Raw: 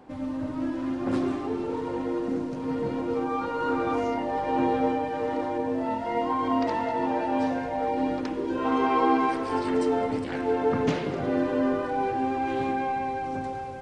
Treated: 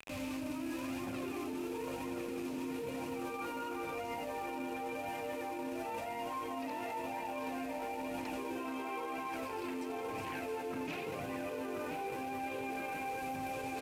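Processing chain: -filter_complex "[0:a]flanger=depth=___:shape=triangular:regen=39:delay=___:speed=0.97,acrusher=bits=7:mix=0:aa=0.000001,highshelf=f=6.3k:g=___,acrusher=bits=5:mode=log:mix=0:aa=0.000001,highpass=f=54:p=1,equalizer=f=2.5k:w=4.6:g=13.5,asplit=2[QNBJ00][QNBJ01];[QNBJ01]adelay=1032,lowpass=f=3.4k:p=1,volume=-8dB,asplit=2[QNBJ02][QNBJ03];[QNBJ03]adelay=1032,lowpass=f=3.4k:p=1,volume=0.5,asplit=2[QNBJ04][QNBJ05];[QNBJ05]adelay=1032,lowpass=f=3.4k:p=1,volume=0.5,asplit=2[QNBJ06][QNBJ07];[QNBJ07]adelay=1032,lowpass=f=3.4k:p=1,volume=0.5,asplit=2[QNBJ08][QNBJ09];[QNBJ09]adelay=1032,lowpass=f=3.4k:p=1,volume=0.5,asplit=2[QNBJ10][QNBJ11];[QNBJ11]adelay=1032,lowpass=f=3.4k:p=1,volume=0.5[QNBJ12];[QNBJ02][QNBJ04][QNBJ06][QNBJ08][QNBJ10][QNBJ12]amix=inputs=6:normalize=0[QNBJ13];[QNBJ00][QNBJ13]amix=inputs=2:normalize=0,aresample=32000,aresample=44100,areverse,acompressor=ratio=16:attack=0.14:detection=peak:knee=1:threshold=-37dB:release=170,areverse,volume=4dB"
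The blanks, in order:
2.6, 0.9, 3.5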